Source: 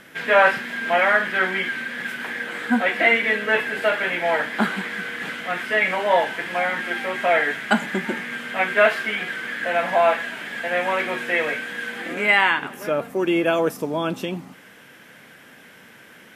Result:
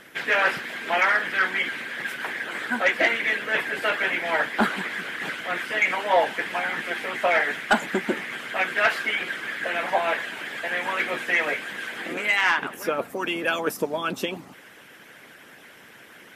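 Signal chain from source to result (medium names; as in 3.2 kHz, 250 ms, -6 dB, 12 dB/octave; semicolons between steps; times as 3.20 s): harmonic-percussive split harmonic -16 dB; saturation -14.5 dBFS, distortion -18 dB; bass shelf 95 Hz -5.5 dB; trim +4.5 dB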